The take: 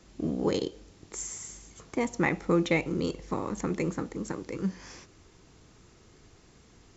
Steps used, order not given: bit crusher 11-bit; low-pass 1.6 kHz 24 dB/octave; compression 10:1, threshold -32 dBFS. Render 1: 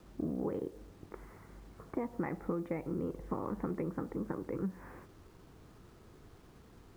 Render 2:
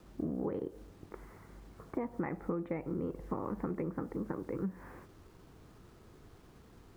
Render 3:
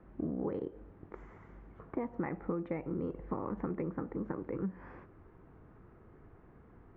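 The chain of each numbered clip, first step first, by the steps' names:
low-pass > compression > bit crusher; low-pass > bit crusher > compression; bit crusher > low-pass > compression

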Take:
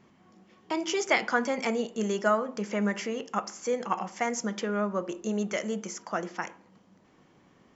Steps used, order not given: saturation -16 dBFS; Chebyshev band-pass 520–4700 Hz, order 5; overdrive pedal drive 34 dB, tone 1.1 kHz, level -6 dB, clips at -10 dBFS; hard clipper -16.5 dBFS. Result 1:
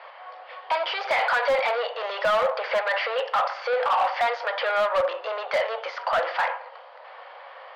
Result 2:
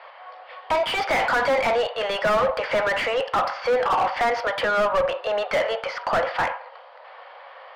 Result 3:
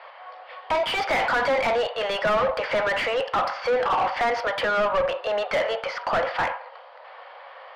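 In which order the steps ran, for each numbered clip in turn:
saturation > overdrive pedal > Chebyshev band-pass > hard clipper; Chebyshev band-pass > saturation > overdrive pedal > hard clipper; Chebyshev band-pass > overdrive pedal > saturation > hard clipper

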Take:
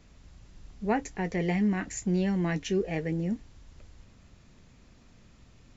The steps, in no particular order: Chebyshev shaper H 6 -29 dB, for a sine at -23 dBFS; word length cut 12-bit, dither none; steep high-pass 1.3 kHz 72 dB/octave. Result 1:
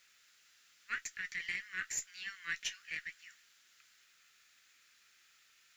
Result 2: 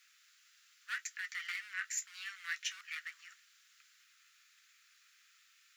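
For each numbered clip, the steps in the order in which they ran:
steep high-pass > Chebyshev shaper > word length cut; Chebyshev shaper > word length cut > steep high-pass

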